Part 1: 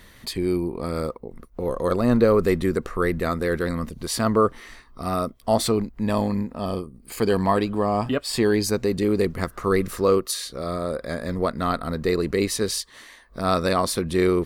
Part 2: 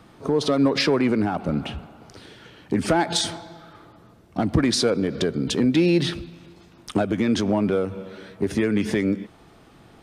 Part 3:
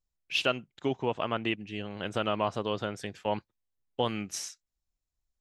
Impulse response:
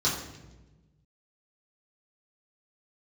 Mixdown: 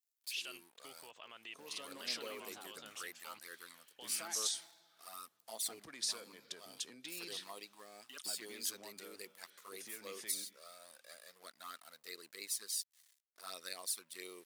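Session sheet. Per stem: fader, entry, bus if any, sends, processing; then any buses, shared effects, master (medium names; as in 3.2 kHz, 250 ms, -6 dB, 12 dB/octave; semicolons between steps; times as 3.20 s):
-6.0 dB, 0.00 s, no send, high-pass 250 Hz 12 dB/octave; touch-sensitive flanger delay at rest 3.6 ms, full sweep at -16.5 dBFS; crossover distortion -46.5 dBFS
-10.5 dB, 1.30 s, no send, none
0.0 dB, 0.00 s, no send, peak limiter -24 dBFS, peak gain reduction 10.5 dB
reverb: none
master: differentiator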